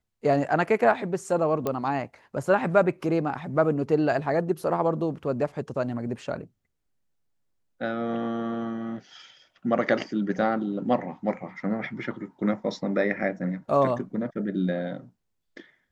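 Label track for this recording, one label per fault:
1.670000	1.670000	pop -14 dBFS

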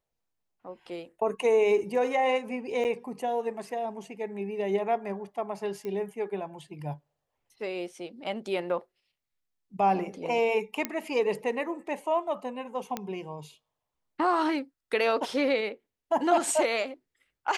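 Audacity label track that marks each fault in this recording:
2.840000	2.850000	gap 9.1 ms
5.850000	5.850000	pop -25 dBFS
10.850000	10.850000	pop -12 dBFS
12.970000	12.970000	pop -16 dBFS

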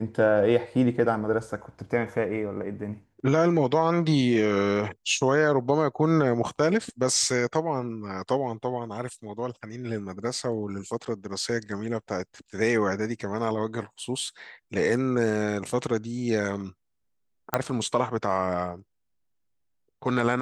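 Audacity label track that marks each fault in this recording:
17.540000	17.540000	pop -8 dBFS

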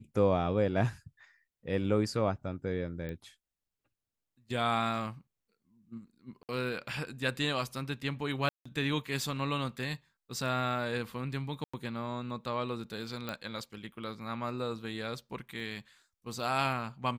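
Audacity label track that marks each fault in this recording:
3.090000	3.090000	pop -27 dBFS
6.430000	6.490000	gap 58 ms
8.490000	8.650000	gap 0.165 s
11.640000	11.730000	gap 95 ms
13.290000	13.290000	pop -21 dBFS
15.600000	15.600000	gap 2.1 ms

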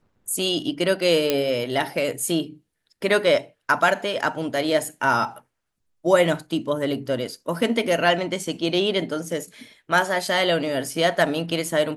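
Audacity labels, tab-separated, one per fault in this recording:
1.300000	1.300000	pop -5 dBFS

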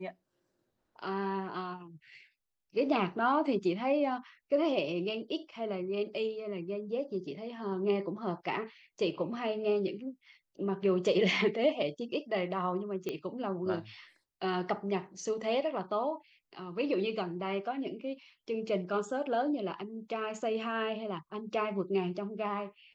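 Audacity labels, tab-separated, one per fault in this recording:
13.090000	13.090000	pop -22 dBFS

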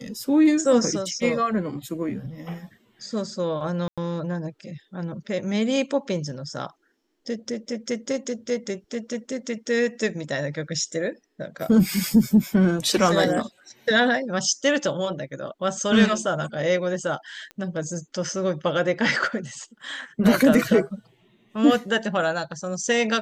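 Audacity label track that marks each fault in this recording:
3.880000	3.980000	gap 96 ms
17.510000	17.510000	pop -24 dBFS

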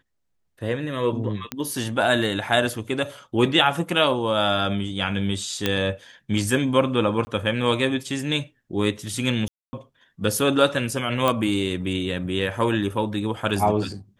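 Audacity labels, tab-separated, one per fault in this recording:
1.520000	1.520000	pop -11 dBFS
5.660000	5.660000	pop -6 dBFS
7.250000	7.270000	gap 20 ms
9.480000	9.730000	gap 0.25 s
11.280000	11.280000	pop -8 dBFS

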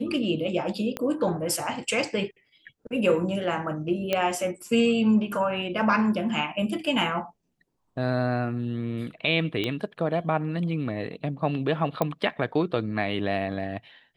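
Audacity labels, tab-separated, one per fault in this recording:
0.970000	0.970000	pop -15 dBFS
4.130000	4.130000	pop -11 dBFS
9.640000	9.640000	pop -15 dBFS
12.020000	12.020000	pop -11 dBFS

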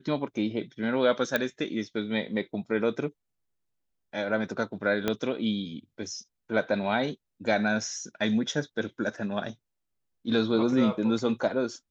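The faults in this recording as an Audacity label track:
1.360000	1.360000	pop -11 dBFS
5.080000	5.080000	pop -12 dBFS

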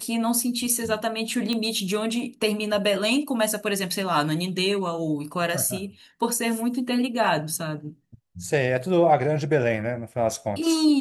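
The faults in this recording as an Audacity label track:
1.530000	1.530000	pop -14 dBFS

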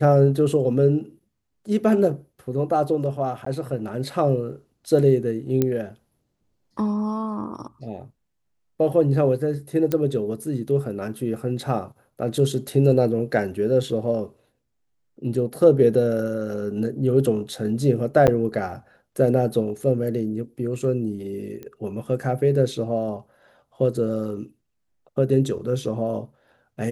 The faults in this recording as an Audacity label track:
3.450000	3.460000	gap 14 ms
5.620000	5.620000	pop -8 dBFS
9.920000	9.920000	pop -10 dBFS
18.270000	18.280000	gap 8.6 ms
21.630000	21.630000	pop -23 dBFS

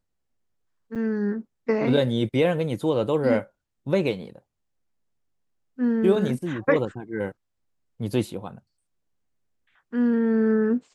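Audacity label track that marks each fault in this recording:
0.950000	0.960000	gap 7.7 ms

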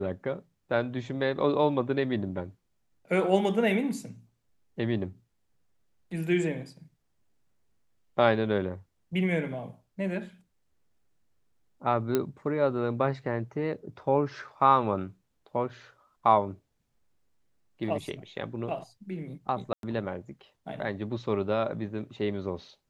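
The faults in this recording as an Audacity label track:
12.150000	12.150000	pop -12 dBFS
19.730000	19.830000	gap 0.102 s

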